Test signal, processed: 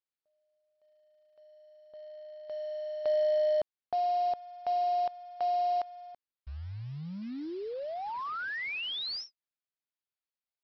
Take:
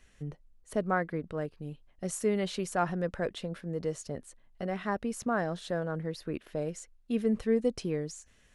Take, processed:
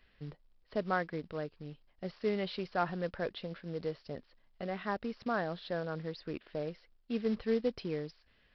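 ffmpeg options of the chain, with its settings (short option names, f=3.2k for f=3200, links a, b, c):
-af "lowshelf=f=310:g=-4,aresample=11025,acrusher=bits=5:mode=log:mix=0:aa=0.000001,aresample=44100,volume=-2.5dB"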